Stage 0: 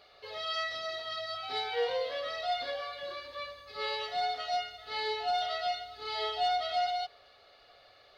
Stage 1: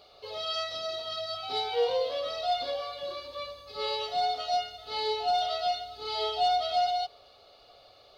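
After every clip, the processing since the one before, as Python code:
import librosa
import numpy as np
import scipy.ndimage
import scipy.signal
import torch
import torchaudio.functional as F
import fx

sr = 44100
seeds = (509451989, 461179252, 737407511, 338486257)

y = fx.peak_eq(x, sr, hz=1800.0, db=-15.0, octaves=0.66)
y = F.gain(torch.from_numpy(y), 5.0).numpy()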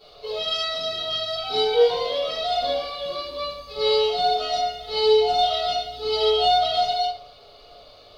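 y = fx.room_shoebox(x, sr, seeds[0], volume_m3=47.0, walls='mixed', distance_m=2.2)
y = F.gain(torch.from_numpy(y), -3.0).numpy()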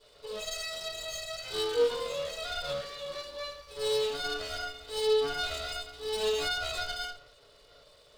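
y = fx.lower_of_two(x, sr, delay_ms=2.0)
y = F.gain(torch.from_numpy(y), -8.5).numpy()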